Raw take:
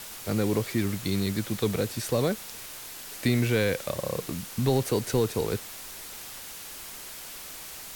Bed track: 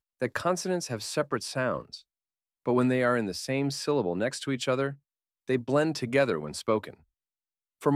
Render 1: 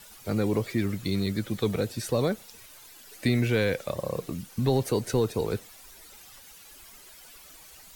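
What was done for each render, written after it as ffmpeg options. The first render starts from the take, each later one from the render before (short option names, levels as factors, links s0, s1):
-af "afftdn=nr=12:nf=-42"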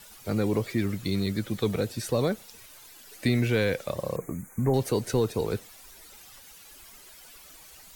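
-filter_complex "[0:a]asettb=1/sr,asplit=3[s0][s1][s2];[s0]atrim=end=4.164[s3];[s1]atrim=start=4.16:end=4.74,asetpts=PTS-STARTPTS,afade=t=in:d=0.004:c=qsin,afade=t=out:st=0.576:d=0.004:c=qsin,asuperstop=centerf=3900:order=20:qfactor=1[s4];[s2]atrim=start=4.736[s5];[s3][s4]acrossfade=d=0.004:c1=hsin:c2=qsin[s6];[s6][s5]acrossfade=d=0.004:c1=qsin:c2=hsin"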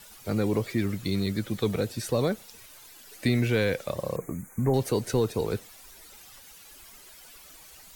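-af anull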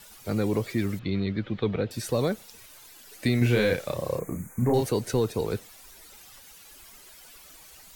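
-filter_complex "[0:a]asettb=1/sr,asplit=3[s0][s1][s2];[s0]atrim=end=0.994[s3];[s1]atrim=start=0.99:end=1.91,asetpts=PTS-STARTPTS,afade=t=in:d=0.004:c=qsin,afade=t=out:st=0.916:d=0.004:c=qsin,lowpass=f=3500:w=0.5412,lowpass=f=3500:w=1.3066[s4];[s2]atrim=start=1.906[s5];[s3][s4]acrossfade=d=0.004:c1=hsin:c2=qsin[s6];[s6][s5]acrossfade=d=0.004:c1=qsin:c2=hsin,asettb=1/sr,asplit=3[s7][s8][s9];[s7]atrim=end=3.384[s10];[s8]atrim=start=3.38:end=4.87,asetpts=PTS-STARTPTS,afade=t=in:d=0.004:c=qsin,afade=t=out:st=1.486:d=0.004:c=qsin,asplit=2[s11][s12];[s12]adelay=33,volume=0.708[s13];[s11][s13]amix=inputs=2:normalize=0,atrim=end_sample=65709[s14];[s9]atrim=start=4.866[s15];[s10][s14]acrossfade=d=0.004:c1=hsin:c2=qsin[s16];[s16][s15]acrossfade=d=0.004:c1=qsin:c2=hsin"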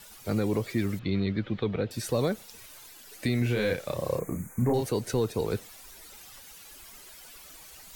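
-af "alimiter=limit=0.15:level=0:latency=1:release=339,areverse,acompressor=mode=upward:threshold=0.00631:ratio=2.5,areverse"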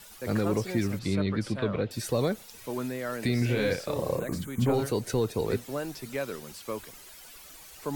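-filter_complex "[1:a]volume=0.355[s0];[0:a][s0]amix=inputs=2:normalize=0"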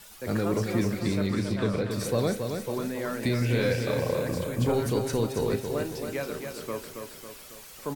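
-filter_complex "[0:a]asplit=2[s0][s1];[s1]adelay=35,volume=0.251[s2];[s0][s2]amix=inputs=2:normalize=0,aecho=1:1:275|550|825|1100|1375|1650:0.501|0.261|0.136|0.0705|0.0366|0.0191"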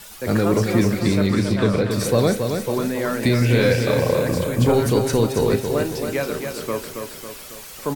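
-af "volume=2.66"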